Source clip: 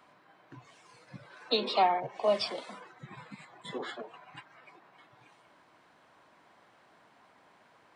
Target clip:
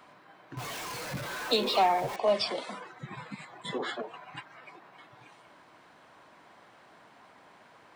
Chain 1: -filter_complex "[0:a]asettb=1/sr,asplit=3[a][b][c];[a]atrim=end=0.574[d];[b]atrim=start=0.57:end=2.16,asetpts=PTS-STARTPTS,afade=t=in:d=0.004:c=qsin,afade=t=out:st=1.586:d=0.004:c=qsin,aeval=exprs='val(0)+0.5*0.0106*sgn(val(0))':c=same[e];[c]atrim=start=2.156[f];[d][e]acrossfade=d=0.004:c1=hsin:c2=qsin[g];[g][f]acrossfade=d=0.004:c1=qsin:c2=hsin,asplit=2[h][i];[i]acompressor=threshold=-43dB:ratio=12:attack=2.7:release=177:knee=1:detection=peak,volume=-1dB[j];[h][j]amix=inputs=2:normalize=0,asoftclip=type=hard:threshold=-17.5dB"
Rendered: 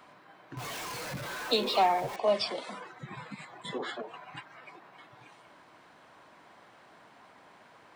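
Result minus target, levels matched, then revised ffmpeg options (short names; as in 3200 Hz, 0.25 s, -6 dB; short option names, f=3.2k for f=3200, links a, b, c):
compressor: peak gain reduction +7.5 dB
-filter_complex "[0:a]asettb=1/sr,asplit=3[a][b][c];[a]atrim=end=0.574[d];[b]atrim=start=0.57:end=2.16,asetpts=PTS-STARTPTS,afade=t=in:d=0.004:c=qsin,afade=t=out:st=1.586:d=0.004:c=qsin,aeval=exprs='val(0)+0.5*0.0106*sgn(val(0))':c=same[e];[c]atrim=start=2.156[f];[d][e]acrossfade=d=0.004:c1=hsin:c2=qsin[g];[g][f]acrossfade=d=0.004:c1=qsin:c2=hsin,asplit=2[h][i];[i]acompressor=threshold=-35dB:ratio=12:attack=2.7:release=177:knee=1:detection=peak,volume=-1dB[j];[h][j]amix=inputs=2:normalize=0,asoftclip=type=hard:threshold=-17.5dB"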